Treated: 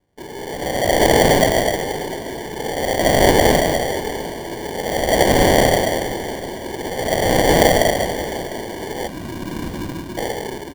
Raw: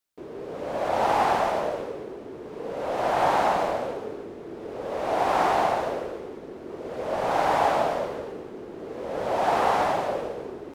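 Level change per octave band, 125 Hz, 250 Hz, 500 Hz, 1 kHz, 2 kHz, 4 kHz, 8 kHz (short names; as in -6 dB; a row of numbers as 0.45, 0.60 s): +17.5, +13.5, +9.0, +2.5, +11.0, +16.0, +20.5 dB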